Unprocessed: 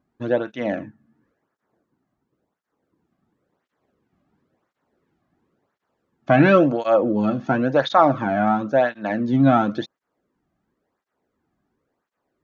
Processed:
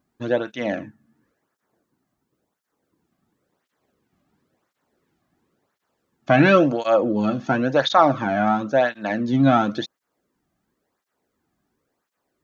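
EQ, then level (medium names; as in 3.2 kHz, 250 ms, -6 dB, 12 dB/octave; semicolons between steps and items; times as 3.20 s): treble shelf 3.2 kHz +11 dB; -1.0 dB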